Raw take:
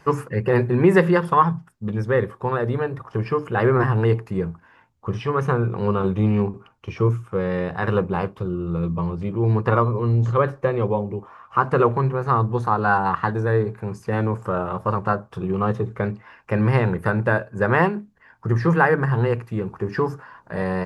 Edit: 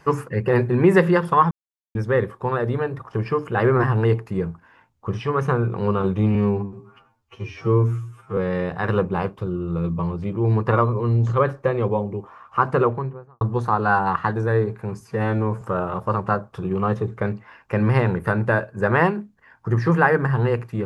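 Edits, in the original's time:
0:01.51–0:01.95: silence
0:06.35–0:07.36: time-stretch 2×
0:11.64–0:12.40: fade out and dull
0:13.99–0:14.40: time-stretch 1.5×

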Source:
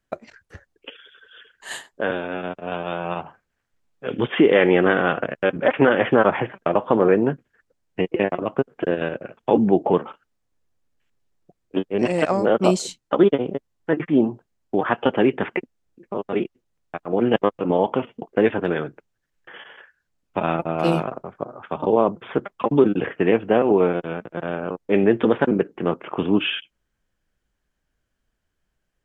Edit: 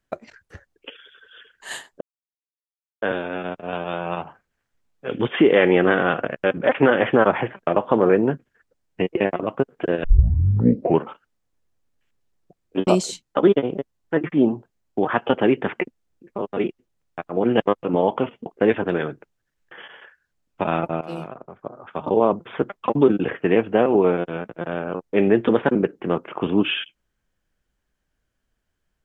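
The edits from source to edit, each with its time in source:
0:02.01: splice in silence 1.01 s
0:09.03: tape start 1.01 s
0:11.86–0:12.63: remove
0:20.77–0:21.93: fade in, from −16.5 dB

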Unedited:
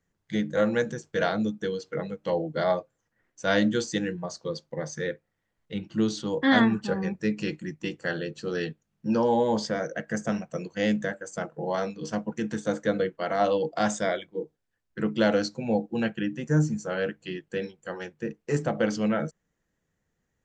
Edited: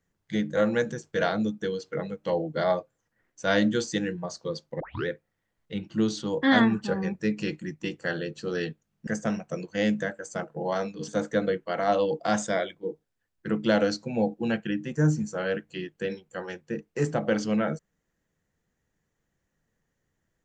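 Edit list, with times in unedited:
0:04.80: tape start 0.27 s
0:09.07–0:10.09: remove
0:12.10–0:12.60: remove

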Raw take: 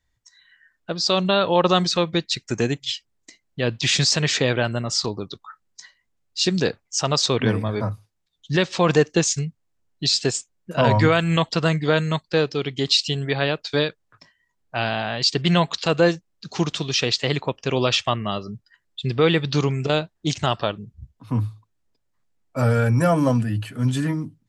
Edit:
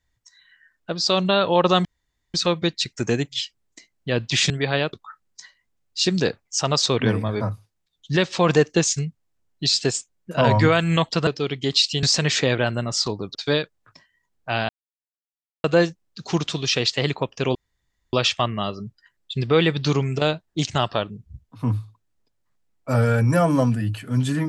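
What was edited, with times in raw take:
0:01.85: splice in room tone 0.49 s
0:04.01–0:05.33: swap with 0:13.18–0:13.61
0:11.67–0:12.42: remove
0:14.95–0:15.90: silence
0:17.81: splice in room tone 0.58 s

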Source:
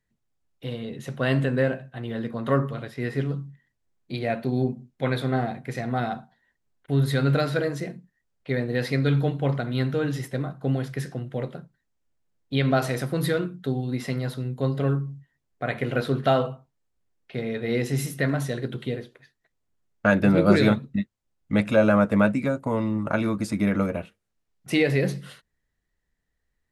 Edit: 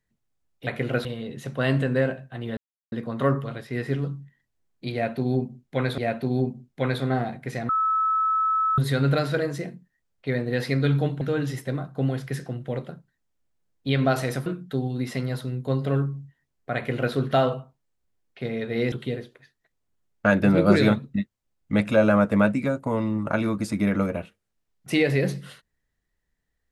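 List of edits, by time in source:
0:02.19: splice in silence 0.35 s
0:04.20–0:05.25: repeat, 2 plays
0:05.91–0:07.00: beep over 1,300 Hz −19.5 dBFS
0:09.43–0:09.87: remove
0:13.12–0:13.39: remove
0:15.69–0:16.07: duplicate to 0:00.67
0:17.85–0:18.72: remove

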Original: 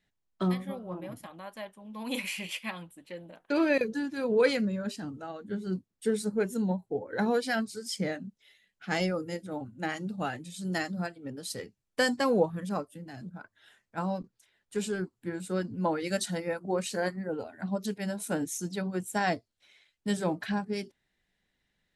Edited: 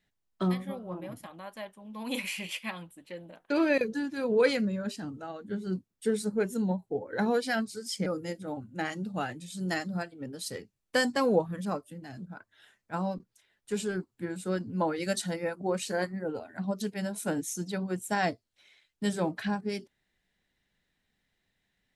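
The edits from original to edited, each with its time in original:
0:08.06–0:09.10: remove

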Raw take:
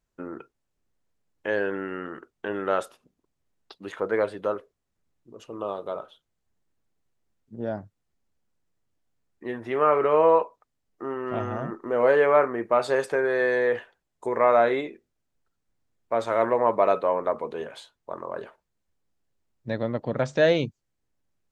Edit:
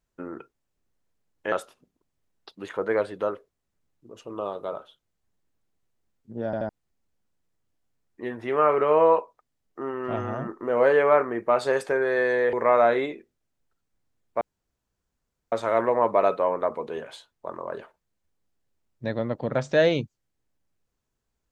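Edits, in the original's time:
0:01.52–0:02.75: remove
0:07.68: stutter in place 0.08 s, 3 plays
0:13.76–0:14.28: remove
0:16.16: splice in room tone 1.11 s

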